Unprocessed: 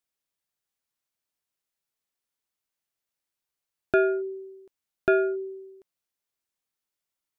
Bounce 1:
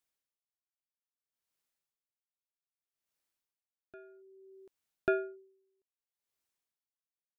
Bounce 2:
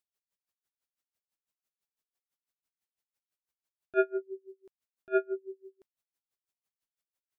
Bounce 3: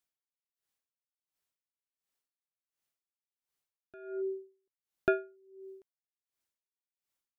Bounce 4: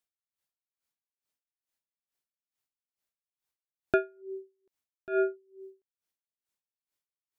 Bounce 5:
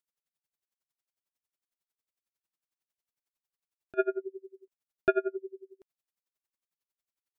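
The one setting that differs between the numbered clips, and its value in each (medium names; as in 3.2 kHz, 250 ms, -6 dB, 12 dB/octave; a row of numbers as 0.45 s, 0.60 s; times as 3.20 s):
logarithmic tremolo, rate: 0.62 Hz, 6 Hz, 1.4 Hz, 2.3 Hz, 11 Hz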